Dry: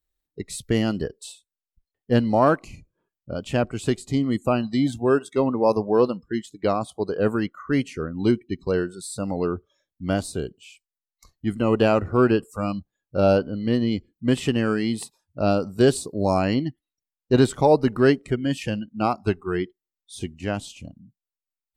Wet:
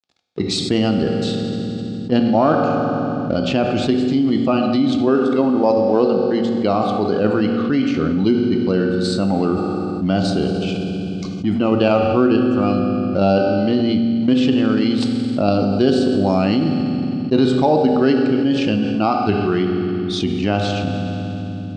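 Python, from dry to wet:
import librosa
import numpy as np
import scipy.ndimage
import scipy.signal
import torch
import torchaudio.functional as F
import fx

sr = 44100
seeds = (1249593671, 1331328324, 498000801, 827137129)

p1 = fx.law_mismatch(x, sr, coded='A')
p2 = fx.peak_eq(p1, sr, hz=1800.0, db=-9.0, octaves=0.63)
p3 = fx.level_steps(p2, sr, step_db=19)
p4 = p2 + (p3 * 10.0 ** (2.0 / 20.0))
p5 = fx.cabinet(p4, sr, low_hz=120.0, low_slope=12, high_hz=4900.0, hz=(130.0, 470.0, 1000.0), db=(-7, -8, -6))
p6 = fx.rev_fdn(p5, sr, rt60_s=1.6, lf_ratio=1.55, hf_ratio=1.0, size_ms=12.0, drr_db=5.5)
p7 = fx.env_flatten(p6, sr, amount_pct=70)
y = p7 * 10.0 ** (-3.0 / 20.0)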